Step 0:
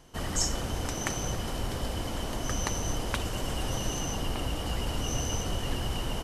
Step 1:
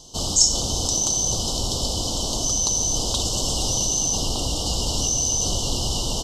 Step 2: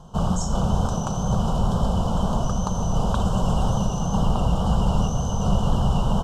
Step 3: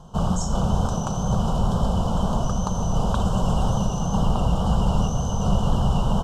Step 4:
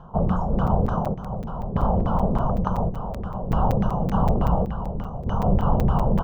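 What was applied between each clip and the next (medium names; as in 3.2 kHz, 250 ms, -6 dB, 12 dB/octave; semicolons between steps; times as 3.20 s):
Chebyshev band-stop 920–4100 Hz, order 2; high-order bell 4.8 kHz +14 dB; in parallel at -2 dB: compressor with a negative ratio -28 dBFS, ratio -0.5
FFT filter 110 Hz 0 dB, 190 Hz +9 dB, 300 Hz -13 dB, 420 Hz -5 dB, 920 Hz +1 dB, 1.6 kHz +9 dB, 4.4 kHz -28 dB, 10 kHz -20 dB; wow and flutter 24 cents; trim +6 dB
no audible change
square tremolo 0.57 Hz, depth 65%, duty 65%; LFO low-pass saw down 3.4 Hz 330–2000 Hz; crackling interface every 0.19 s, samples 256, zero, from 0.67 s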